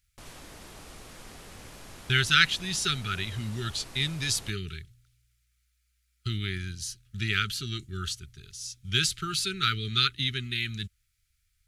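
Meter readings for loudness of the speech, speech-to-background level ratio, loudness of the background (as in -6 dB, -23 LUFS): -28.0 LUFS, 19.0 dB, -47.0 LUFS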